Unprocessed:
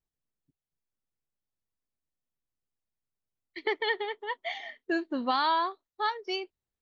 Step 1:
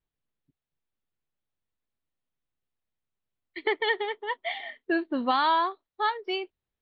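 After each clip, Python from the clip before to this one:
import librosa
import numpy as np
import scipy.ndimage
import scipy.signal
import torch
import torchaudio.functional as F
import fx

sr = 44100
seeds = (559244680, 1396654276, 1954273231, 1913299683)

y = scipy.signal.sosfilt(scipy.signal.butter(6, 4000.0, 'lowpass', fs=sr, output='sos'), x)
y = F.gain(torch.from_numpy(y), 3.0).numpy()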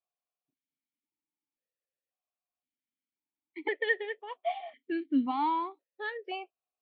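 y = fx.vowel_held(x, sr, hz=1.9)
y = F.gain(torch.from_numpy(y), 6.0).numpy()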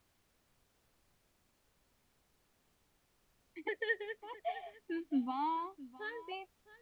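y = x + 10.0 ** (-18.0 / 20.0) * np.pad(x, (int(661 * sr / 1000.0), 0))[:len(x)]
y = fx.dmg_noise_colour(y, sr, seeds[0], colour='pink', level_db=-68.0)
y = F.gain(torch.from_numpy(y), -6.5).numpy()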